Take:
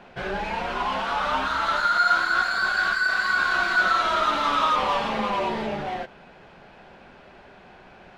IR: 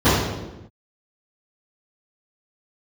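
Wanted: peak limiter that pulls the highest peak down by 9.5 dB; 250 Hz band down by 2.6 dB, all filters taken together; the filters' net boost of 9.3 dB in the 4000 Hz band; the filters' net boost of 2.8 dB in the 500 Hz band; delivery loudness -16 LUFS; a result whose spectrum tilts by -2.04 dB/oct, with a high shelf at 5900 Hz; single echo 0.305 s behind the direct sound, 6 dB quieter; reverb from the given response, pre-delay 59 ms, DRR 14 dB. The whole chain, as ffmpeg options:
-filter_complex "[0:a]equalizer=f=250:t=o:g=-5,equalizer=f=500:t=o:g=4.5,equalizer=f=4k:t=o:g=8,highshelf=f=5.9k:g=8.5,alimiter=limit=-16.5dB:level=0:latency=1,aecho=1:1:305:0.501,asplit=2[a][b];[1:a]atrim=start_sample=2205,adelay=59[c];[b][c]afir=irnorm=-1:irlink=0,volume=-39dB[d];[a][d]amix=inputs=2:normalize=0,volume=7dB"

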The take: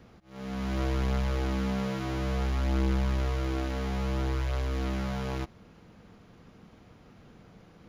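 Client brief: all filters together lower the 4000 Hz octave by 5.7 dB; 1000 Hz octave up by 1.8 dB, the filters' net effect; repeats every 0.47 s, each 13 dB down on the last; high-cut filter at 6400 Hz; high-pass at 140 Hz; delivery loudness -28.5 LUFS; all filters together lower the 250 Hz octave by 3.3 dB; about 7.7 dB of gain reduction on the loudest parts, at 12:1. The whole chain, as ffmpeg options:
-af "highpass=140,lowpass=6.4k,equalizer=f=250:t=o:g=-4,equalizer=f=1k:t=o:g=3,equalizer=f=4k:t=o:g=-7.5,acompressor=threshold=-36dB:ratio=12,aecho=1:1:470|940|1410:0.224|0.0493|0.0108,volume=13.5dB"

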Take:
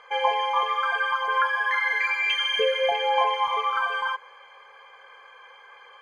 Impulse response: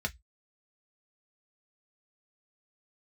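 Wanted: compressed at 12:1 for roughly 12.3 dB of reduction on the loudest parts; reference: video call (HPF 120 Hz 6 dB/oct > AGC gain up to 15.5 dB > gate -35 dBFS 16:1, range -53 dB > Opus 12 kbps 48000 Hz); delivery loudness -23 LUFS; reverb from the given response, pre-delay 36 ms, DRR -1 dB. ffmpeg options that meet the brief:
-filter_complex "[0:a]acompressor=threshold=-30dB:ratio=12,asplit=2[a][b];[1:a]atrim=start_sample=2205,adelay=36[c];[b][c]afir=irnorm=-1:irlink=0,volume=-3.5dB[d];[a][d]amix=inputs=2:normalize=0,highpass=f=120:p=1,dynaudnorm=m=15.5dB,agate=range=-53dB:threshold=-35dB:ratio=16,volume=7dB" -ar 48000 -c:a libopus -b:a 12k

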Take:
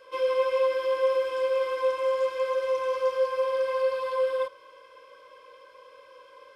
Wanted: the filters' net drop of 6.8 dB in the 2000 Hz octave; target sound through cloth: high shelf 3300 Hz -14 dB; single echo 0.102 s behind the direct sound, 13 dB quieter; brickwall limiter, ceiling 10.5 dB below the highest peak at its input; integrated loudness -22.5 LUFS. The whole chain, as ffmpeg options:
-af "equalizer=f=2k:t=o:g=-5,alimiter=level_in=2dB:limit=-24dB:level=0:latency=1,volume=-2dB,highshelf=f=3.3k:g=-14,aecho=1:1:102:0.224,volume=10dB"

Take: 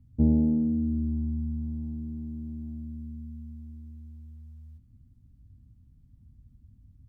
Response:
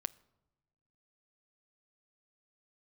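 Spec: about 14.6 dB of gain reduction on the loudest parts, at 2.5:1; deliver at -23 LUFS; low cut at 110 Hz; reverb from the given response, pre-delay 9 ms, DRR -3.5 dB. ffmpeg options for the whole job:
-filter_complex "[0:a]highpass=110,acompressor=threshold=-42dB:ratio=2.5,asplit=2[a][b];[1:a]atrim=start_sample=2205,adelay=9[c];[b][c]afir=irnorm=-1:irlink=0,volume=4.5dB[d];[a][d]amix=inputs=2:normalize=0,volume=13.5dB"

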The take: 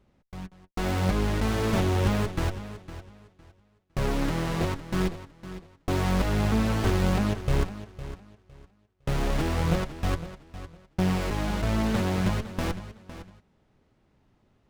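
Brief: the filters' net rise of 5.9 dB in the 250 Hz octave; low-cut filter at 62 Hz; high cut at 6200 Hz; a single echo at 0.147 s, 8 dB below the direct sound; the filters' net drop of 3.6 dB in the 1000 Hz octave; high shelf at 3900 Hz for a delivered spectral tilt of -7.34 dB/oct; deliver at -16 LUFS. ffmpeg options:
-af "highpass=62,lowpass=6.2k,equalizer=f=250:t=o:g=8.5,equalizer=f=1k:t=o:g=-5,highshelf=f=3.9k:g=-4,aecho=1:1:147:0.398,volume=8.5dB"

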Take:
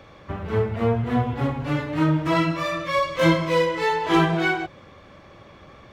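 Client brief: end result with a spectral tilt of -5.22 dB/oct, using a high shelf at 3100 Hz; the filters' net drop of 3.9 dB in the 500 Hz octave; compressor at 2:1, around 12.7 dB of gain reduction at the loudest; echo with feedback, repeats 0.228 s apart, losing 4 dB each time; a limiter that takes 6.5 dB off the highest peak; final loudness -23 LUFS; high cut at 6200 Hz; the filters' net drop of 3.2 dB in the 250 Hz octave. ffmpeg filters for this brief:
-af "lowpass=6.2k,equalizer=f=250:t=o:g=-3.5,equalizer=f=500:t=o:g=-3.5,highshelf=f=3.1k:g=-6,acompressor=threshold=-40dB:ratio=2,alimiter=level_in=4dB:limit=-24dB:level=0:latency=1,volume=-4dB,aecho=1:1:228|456|684|912|1140|1368|1596|1824|2052:0.631|0.398|0.25|0.158|0.0994|0.0626|0.0394|0.0249|0.0157,volume=13dB"

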